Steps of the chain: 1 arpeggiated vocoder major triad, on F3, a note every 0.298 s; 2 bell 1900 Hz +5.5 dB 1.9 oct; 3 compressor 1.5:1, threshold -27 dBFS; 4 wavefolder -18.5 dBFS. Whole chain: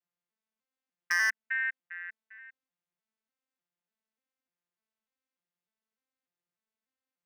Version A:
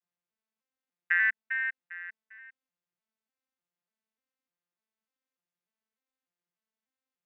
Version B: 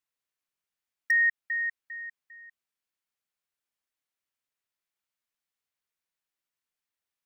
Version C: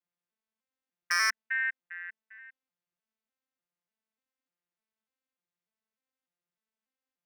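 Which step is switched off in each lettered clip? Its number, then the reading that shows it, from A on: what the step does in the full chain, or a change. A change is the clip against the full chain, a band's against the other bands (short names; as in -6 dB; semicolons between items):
4, distortion -10 dB; 1, crest factor change -3.5 dB; 3, 2 kHz band -8.5 dB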